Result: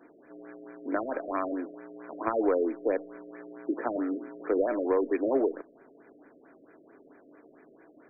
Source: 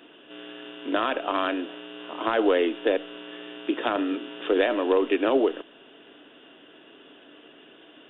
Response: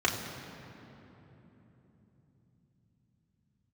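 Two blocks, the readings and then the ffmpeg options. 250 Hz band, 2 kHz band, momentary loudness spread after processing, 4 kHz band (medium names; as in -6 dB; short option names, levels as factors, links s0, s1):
-4.0 dB, -10.5 dB, 19 LU, no reading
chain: -af "aeval=exprs='0.376*(cos(1*acos(clip(val(0)/0.376,-1,1)))-cos(1*PI/2))+0.0944*(cos(3*acos(clip(val(0)/0.376,-1,1)))-cos(3*PI/2))+0.0335*(cos(5*acos(clip(val(0)/0.376,-1,1)))-cos(5*PI/2))':c=same,afftfilt=real='re*lt(b*sr/1024,640*pow(2500/640,0.5+0.5*sin(2*PI*4.5*pts/sr)))':imag='im*lt(b*sr/1024,640*pow(2500/640,0.5+0.5*sin(2*PI*4.5*pts/sr)))':win_size=1024:overlap=0.75"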